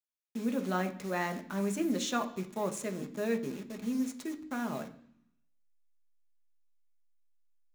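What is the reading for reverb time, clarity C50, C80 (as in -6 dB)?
0.65 s, 14.0 dB, 17.0 dB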